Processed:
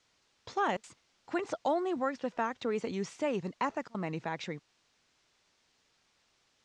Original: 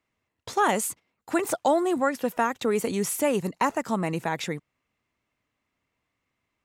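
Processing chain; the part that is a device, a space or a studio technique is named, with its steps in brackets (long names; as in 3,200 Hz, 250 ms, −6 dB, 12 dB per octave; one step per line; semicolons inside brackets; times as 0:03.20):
worn cassette (low-pass filter 6,900 Hz 12 dB per octave; tape wow and flutter; tape dropouts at 0:00.77/0:03.54/0:03.88, 64 ms −26 dB; white noise bed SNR 31 dB)
low-pass filter 6,300 Hz 24 dB per octave
level −8 dB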